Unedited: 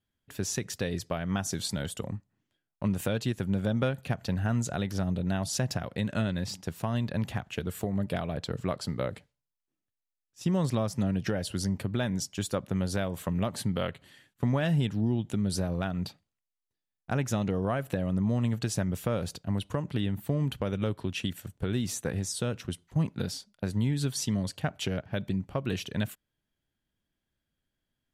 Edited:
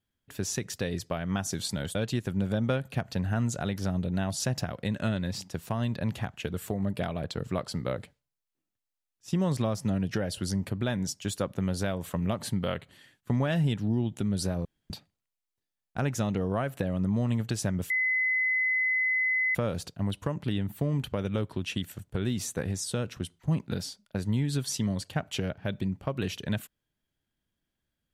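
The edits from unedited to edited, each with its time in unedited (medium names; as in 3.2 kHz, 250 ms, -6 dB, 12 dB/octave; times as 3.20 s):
1.95–3.08 s: delete
15.78–16.03 s: room tone
19.03 s: add tone 2.03 kHz -23.5 dBFS 1.65 s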